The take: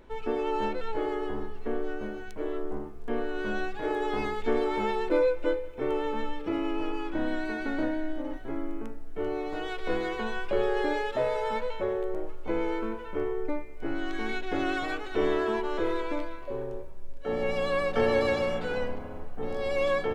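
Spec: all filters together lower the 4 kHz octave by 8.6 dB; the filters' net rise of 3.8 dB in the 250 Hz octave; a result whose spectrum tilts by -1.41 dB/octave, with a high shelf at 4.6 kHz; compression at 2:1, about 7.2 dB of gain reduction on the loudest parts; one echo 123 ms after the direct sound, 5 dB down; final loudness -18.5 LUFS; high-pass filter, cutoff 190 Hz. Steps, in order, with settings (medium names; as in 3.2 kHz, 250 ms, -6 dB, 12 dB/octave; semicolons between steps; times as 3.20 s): high-pass 190 Hz; peaking EQ 250 Hz +6.5 dB; peaking EQ 4 kHz -8 dB; treble shelf 4.6 kHz -9 dB; compression 2:1, threshold -33 dBFS; delay 123 ms -5 dB; trim +15 dB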